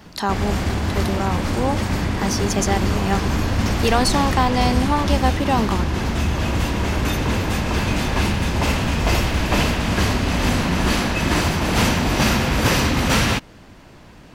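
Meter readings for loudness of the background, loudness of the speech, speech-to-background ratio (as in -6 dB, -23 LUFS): -21.0 LUFS, -23.0 LUFS, -2.0 dB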